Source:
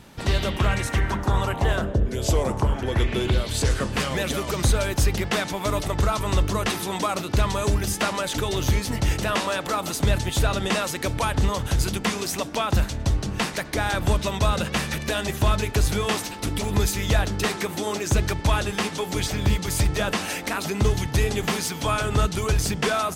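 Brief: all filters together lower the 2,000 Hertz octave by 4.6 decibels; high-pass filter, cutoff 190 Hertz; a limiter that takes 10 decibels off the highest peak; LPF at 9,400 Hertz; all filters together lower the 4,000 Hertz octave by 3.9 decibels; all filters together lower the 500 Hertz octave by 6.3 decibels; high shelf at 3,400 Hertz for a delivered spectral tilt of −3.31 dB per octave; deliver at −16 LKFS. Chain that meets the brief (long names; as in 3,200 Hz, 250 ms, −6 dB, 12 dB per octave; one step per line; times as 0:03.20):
high-pass filter 190 Hz
low-pass filter 9,400 Hz
parametric band 500 Hz −8 dB
parametric band 2,000 Hz −5.5 dB
high-shelf EQ 3,400 Hz +5 dB
parametric band 4,000 Hz −6.5 dB
level +16.5 dB
brickwall limiter −6 dBFS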